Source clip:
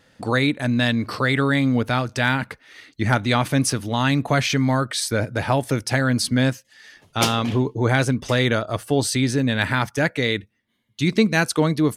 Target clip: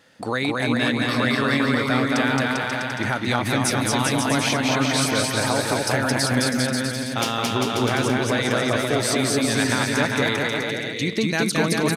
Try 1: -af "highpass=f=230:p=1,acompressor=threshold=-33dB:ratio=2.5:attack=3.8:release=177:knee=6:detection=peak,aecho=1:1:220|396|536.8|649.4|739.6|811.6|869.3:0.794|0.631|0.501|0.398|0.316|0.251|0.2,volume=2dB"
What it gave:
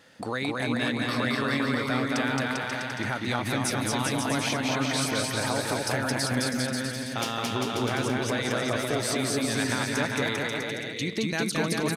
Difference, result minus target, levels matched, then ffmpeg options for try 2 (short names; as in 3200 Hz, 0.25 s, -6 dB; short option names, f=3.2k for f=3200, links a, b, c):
compressor: peak gain reduction +6.5 dB
-af "highpass=f=230:p=1,acompressor=threshold=-22.5dB:ratio=2.5:attack=3.8:release=177:knee=6:detection=peak,aecho=1:1:220|396|536.8|649.4|739.6|811.6|869.3:0.794|0.631|0.501|0.398|0.316|0.251|0.2,volume=2dB"